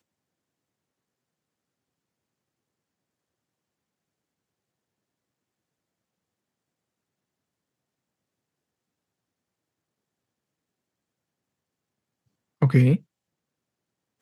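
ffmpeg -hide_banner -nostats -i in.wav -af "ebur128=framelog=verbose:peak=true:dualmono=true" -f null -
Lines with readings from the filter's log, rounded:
Integrated loudness:
  I:         -18.4 LUFS
  Threshold: -28.9 LUFS
Loudness range:
  LRA:         2.8 LU
  Threshold: -45.1 LUFS
  LRA low:   -27.5 LUFS
  LRA high:  -24.7 LUFS
True peak:
  Peak:       -5.8 dBFS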